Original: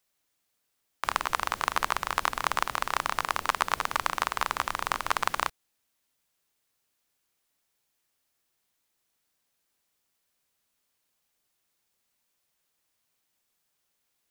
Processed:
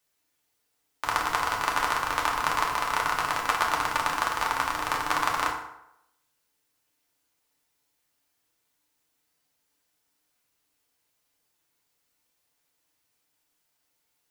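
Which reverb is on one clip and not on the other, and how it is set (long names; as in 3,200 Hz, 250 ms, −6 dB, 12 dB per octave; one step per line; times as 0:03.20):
feedback delay network reverb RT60 0.82 s, low-frequency decay 0.85×, high-frequency decay 0.65×, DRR −2 dB
level −1.5 dB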